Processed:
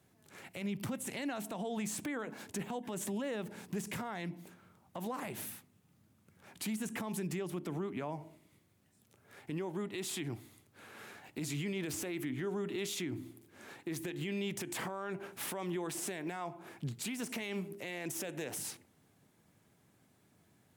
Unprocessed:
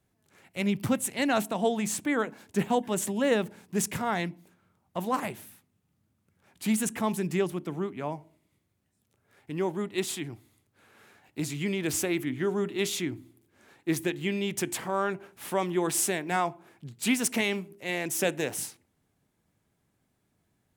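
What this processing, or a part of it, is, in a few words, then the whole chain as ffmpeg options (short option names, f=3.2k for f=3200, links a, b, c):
podcast mastering chain: -af "highpass=93,deesser=0.6,acompressor=threshold=-36dB:ratio=3,alimiter=level_in=12dB:limit=-24dB:level=0:latency=1:release=95,volume=-12dB,volume=6.5dB" -ar 44100 -c:a libmp3lame -b:a 112k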